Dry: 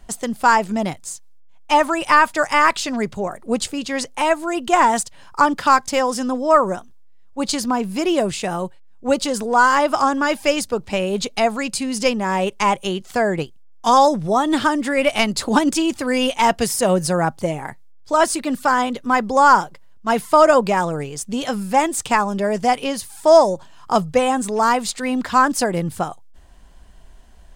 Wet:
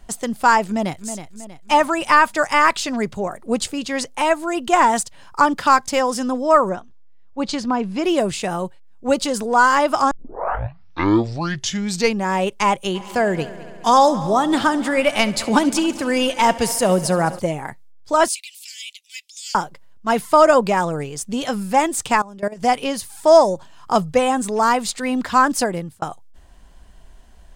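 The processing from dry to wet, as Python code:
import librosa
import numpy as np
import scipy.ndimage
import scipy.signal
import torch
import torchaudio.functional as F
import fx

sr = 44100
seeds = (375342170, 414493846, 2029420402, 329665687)

y = fx.echo_throw(x, sr, start_s=0.66, length_s=0.46, ms=320, feedback_pct=45, wet_db=-10.0)
y = fx.air_absorb(y, sr, metres=110.0, at=(6.69, 8.04))
y = fx.echo_heads(y, sr, ms=69, heads='first and third', feedback_pct=66, wet_db=-19, at=(12.94, 17.38), fade=0.02)
y = fx.steep_highpass(y, sr, hz=2300.0, slope=72, at=(18.28, 19.55))
y = fx.level_steps(y, sr, step_db=19, at=(22.21, 22.62))
y = fx.edit(y, sr, fx.tape_start(start_s=10.11, length_s=2.18),
    fx.fade_out_span(start_s=25.62, length_s=0.4), tone=tone)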